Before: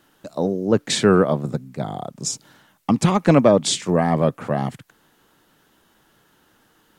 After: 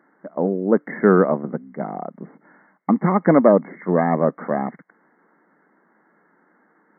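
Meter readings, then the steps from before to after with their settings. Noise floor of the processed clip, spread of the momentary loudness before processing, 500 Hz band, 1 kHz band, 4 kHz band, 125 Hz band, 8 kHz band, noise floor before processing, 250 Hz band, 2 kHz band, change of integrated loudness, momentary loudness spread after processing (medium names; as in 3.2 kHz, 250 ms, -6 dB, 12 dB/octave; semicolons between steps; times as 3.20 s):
-62 dBFS, 14 LU, +1.0 dB, +1.0 dB, under -40 dB, -4.0 dB, under -40 dB, -61 dBFS, +0.5 dB, 0.0 dB, +0.5 dB, 16 LU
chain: brick-wall FIR band-pass 160–2200 Hz; trim +1 dB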